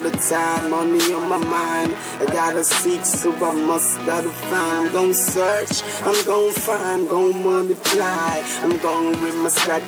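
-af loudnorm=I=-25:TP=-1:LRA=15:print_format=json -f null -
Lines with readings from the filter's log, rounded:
"input_i" : "-19.4",
"input_tp" : "-6.7",
"input_lra" : "0.7",
"input_thresh" : "-29.4",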